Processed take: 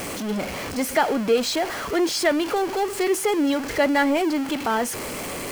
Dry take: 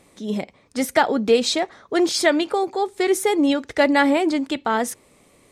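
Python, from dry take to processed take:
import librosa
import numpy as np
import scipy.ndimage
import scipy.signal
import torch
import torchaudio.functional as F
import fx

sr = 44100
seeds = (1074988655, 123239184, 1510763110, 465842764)

y = x + 0.5 * 10.0 ** (-19.5 / 20.0) * np.sign(x)
y = fx.bass_treble(y, sr, bass_db=-3, treble_db=-3)
y = fx.notch(y, sr, hz=3700.0, q=12.0)
y = y * librosa.db_to_amplitude(-4.5)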